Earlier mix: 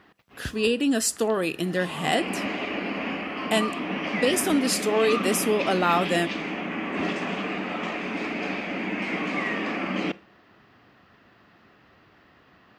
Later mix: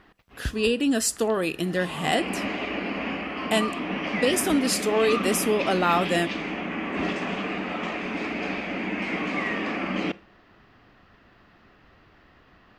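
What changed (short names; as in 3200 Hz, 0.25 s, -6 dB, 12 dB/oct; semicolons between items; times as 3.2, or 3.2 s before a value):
background: add high shelf 12000 Hz -5.5 dB; master: remove HPF 98 Hz 12 dB/oct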